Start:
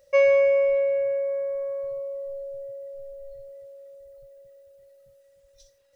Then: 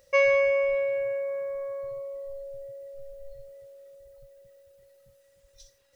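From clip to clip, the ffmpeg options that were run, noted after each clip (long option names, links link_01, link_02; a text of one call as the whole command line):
ffmpeg -i in.wav -af "equalizer=frequency=580:width=5.6:gain=-10,volume=3.5dB" out.wav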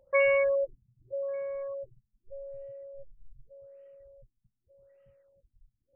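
ffmpeg -i in.wav -af "afftfilt=real='re*lt(b*sr/1024,220*pow(3200/220,0.5+0.5*sin(2*PI*0.84*pts/sr)))':imag='im*lt(b*sr/1024,220*pow(3200/220,0.5+0.5*sin(2*PI*0.84*pts/sr)))':win_size=1024:overlap=0.75,volume=-2.5dB" out.wav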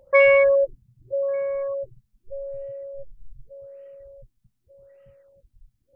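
ffmpeg -i in.wav -af "acontrast=70,volume=2.5dB" out.wav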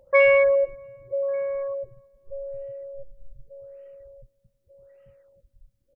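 ffmpeg -i in.wav -filter_complex "[0:a]asplit=2[link_01][link_02];[link_02]adelay=317,lowpass=frequency=1300:poles=1,volume=-23.5dB,asplit=2[link_03][link_04];[link_04]adelay=317,lowpass=frequency=1300:poles=1,volume=0.47,asplit=2[link_05][link_06];[link_06]adelay=317,lowpass=frequency=1300:poles=1,volume=0.47[link_07];[link_01][link_03][link_05][link_07]amix=inputs=4:normalize=0,volume=-1.5dB" out.wav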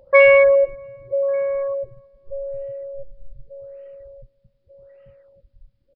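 ffmpeg -i in.wav -af "aresample=11025,aresample=44100,volume=5.5dB" out.wav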